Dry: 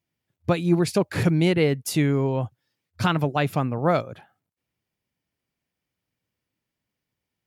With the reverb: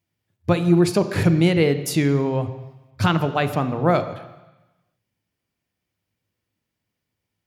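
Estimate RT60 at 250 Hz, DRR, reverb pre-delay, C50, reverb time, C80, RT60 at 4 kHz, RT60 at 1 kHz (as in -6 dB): 1.0 s, 10.0 dB, 6 ms, 11.5 dB, 1.0 s, 13.5 dB, 1.1 s, 1.1 s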